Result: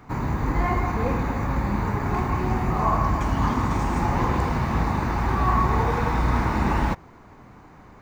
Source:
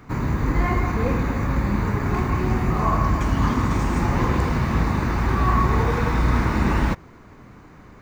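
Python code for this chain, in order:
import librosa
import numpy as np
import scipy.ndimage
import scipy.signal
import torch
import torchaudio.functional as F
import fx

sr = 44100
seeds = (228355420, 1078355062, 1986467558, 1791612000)

y = fx.peak_eq(x, sr, hz=820.0, db=7.0, octaves=0.66)
y = y * 10.0 ** (-3.0 / 20.0)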